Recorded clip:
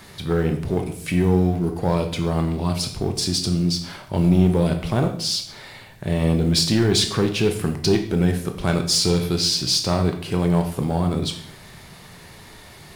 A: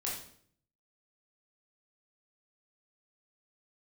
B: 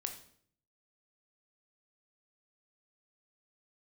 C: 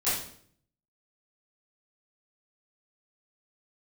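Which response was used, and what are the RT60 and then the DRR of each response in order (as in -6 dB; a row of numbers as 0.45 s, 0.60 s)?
B; 0.60 s, 0.60 s, 0.60 s; -5.0 dB, 5.0 dB, -15.0 dB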